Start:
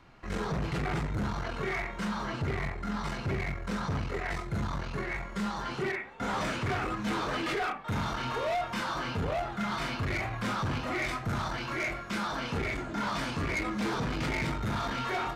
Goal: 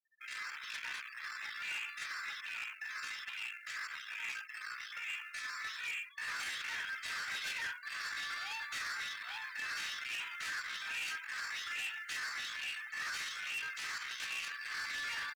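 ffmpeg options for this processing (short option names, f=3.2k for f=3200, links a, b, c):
-af "highpass=f=1.2k:w=0.5412,highpass=f=1.2k:w=1.3066,bandreject=f=2.3k:w=14,afftfilt=real='re*gte(hypot(re,im),0.00447)':imag='im*gte(hypot(re,im),0.00447)':win_size=1024:overlap=0.75,acrusher=bits=5:mode=log:mix=0:aa=0.000001,asoftclip=type=tanh:threshold=-36dB,asetrate=55563,aresample=44100,atempo=0.793701,volume=1dB"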